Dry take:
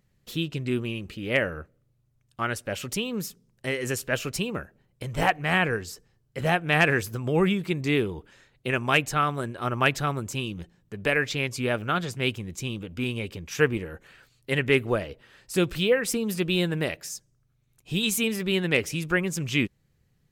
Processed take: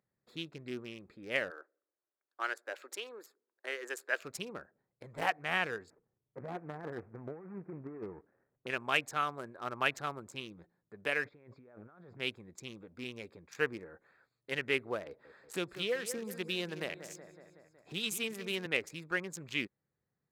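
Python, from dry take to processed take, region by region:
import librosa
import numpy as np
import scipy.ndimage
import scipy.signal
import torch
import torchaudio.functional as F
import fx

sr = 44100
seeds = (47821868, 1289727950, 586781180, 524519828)

y = fx.chain(x, sr, fx.cheby1_highpass(hz=320.0, order=4),
    fx.peak_eq(hz=1600.0, db=6.0, octaves=0.4), at=(1.5, 4.22))
y = fx.chain(y, sr, fx.median_filter(points=41),
    fx.brickwall_lowpass(high_hz=2700.0),
    fx.over_compress(threshold_db=-27.0, ratio=-0.5), at=(5.9, 8.67))
y = fx.chain(y, sr, fx.over_compress(threshold_db=-38.0, ratio=-1.0),
    fx.spacing_loss(db_at_10k=36), at=(11.25, 12.18))
y = fx.chain(y, sr, fx.echo_feedback(ms=186, feedback_pct=52, wet_db=-12.0),
    fx.band_squash(depth_pct=40), at=(15.06, 18.66))
y = fx.wiener(y, sr, points=15)
y = fx.highpass(y, sr, hz=580.0, slope=6)
y = y * librosa.db_to_amplitude(-7.0)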